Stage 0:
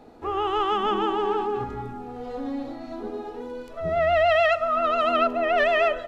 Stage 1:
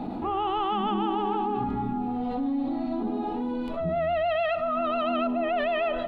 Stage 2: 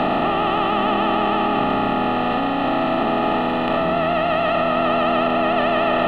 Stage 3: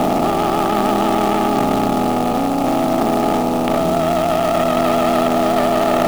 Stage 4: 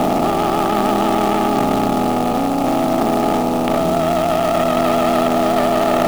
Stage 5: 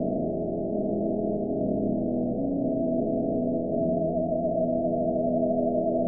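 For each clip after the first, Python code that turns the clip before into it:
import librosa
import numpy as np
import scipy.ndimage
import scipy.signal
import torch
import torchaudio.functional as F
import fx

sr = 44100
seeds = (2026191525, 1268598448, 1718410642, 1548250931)

y1 = fx.curve_eq(x, sr, hz=(120.0, 190.0, 320.0, 450.0, 780.0, 1700.0, 2700.0, 3900.0, 5900.0, 9900.0), db=(0, 12, 6, -7, 5, -6, 0, -1, -17, -11))
y1 = fx.env_flatten(y1, sr, amount_pct=70)
y1 = F.gain(torch.from_numpy(y1), -8.5).numpy()
y2 = fx.bin_compress(y1, sr, power=0.2)
y2 = fx.low_shelf(y2, sr, hz=180.0, db=-6.0)
y2 = F.gain(torch.from_numpy(y2), 1.5).numpy()
y3 = fx.wiener(y2, sr, points=25)
y3 = fx.quant_float(y3, sr, bits=2)
y3 = F.gain(torch.from_numpy(y3), 5.0).numpy()
y4 = y3
y5 = scipy.signal.sosfilt(scipy.signal.cheby1(6, 3, 670.0, 'lowpass', fs=sr, output='sos'), y4)
y5 = y5 + 10.0 ** (-7.0 / 20.0) * np.pad(y5, (int(729 * sr / 1000.0), 0))[:len(y5)]
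y5 = F.gain(torch.from_numpy(y5), -7.5).numpy()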